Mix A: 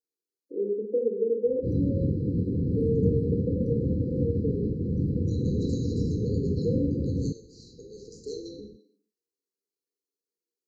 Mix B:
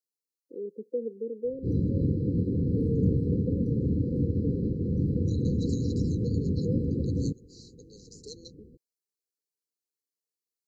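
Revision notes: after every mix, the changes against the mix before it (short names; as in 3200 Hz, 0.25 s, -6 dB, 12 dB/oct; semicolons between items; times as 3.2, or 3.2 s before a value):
second voice +4.5 dB; reverb: off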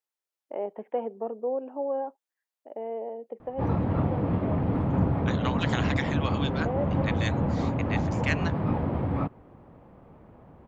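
background: entry +1.95 s; master: remove brick-wall FIR band-stop 520–3900 Hz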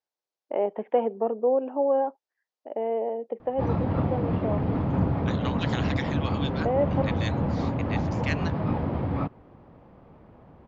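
first voice +6.5 dB; second voice -4.0 dB; master: add synth low-pass 5200 Hz, resonance Q 1.8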